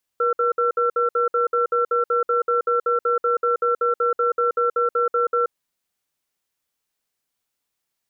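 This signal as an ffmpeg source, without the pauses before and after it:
ffmpeg -f lavfi -i "aevalsrc='0.106*(sin(2*PI*479*t)+sin(2*PI*1350*t))*clip(min(mod(t,0.19),0.13-mod(t,0.19))/0.005,0,1)':duration=5.27:sample_rate=44100" out.wav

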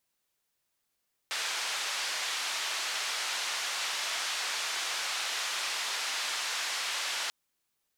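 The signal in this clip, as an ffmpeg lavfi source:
ffmpeg -f lavfi -i "anoisesrc=color=white:duration=5.99:sample_rate=44100:seed=1,highpass=frequency=860,lowpass=frequency=5200,volume=-21.9dB" out.wav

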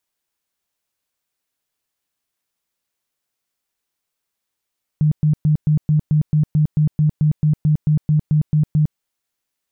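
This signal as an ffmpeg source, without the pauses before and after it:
ffmpeg -f lavfi -i "aevalsrc='0.266*sin(2*PI*152*mod(t,0.22))*lt(mod(t,0.22),16/152)':duration=3.96:sample_rate=44100" out.wav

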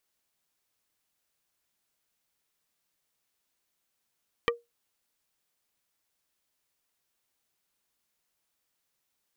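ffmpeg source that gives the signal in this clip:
ffmpeg -f lavfi -i "aevalsrc='0.1*pow(10,-3*t/0.19)*sin(2*PI*472*t)+0.0944*pow(10,-3*t/0.063)*sin(2*PI*1180*t)+0.0891*pow(10,-3*t/0.036)*sin(2*PI*1888*t)+0.0841*pow(10,-3*t/0.028)*sin(2*PI*2360*t)+0.0794*pow(10,-3*t/0.02)*sin(2*PI*3068*t)':duration=0.45:sample_rate=44100" out.wav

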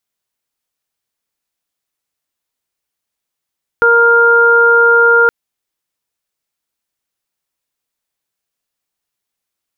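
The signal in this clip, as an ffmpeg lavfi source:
ffmpeg -f lavfi -i "aevalsrc='0.282*sin(2*PI*468*t)+0.112*sin(2*PI*936*t)+0.447*sin(2*PI*1404*t)':duration=1.47:sample_rate=44100" out.wav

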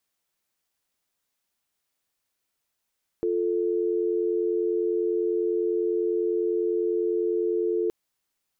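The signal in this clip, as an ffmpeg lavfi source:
ffmpeg -f lavfi -i "aevalsrc='0.0562*(sin(2*PI*350*t)+sin(2*PI*440*t))':duration=4.67:sample_rate=44100" out.wav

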